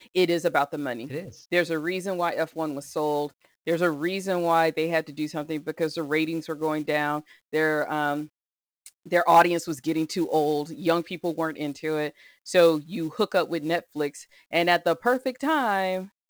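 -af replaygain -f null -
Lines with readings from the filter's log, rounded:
track_gain = +5.4 dB
track_peak = 0.256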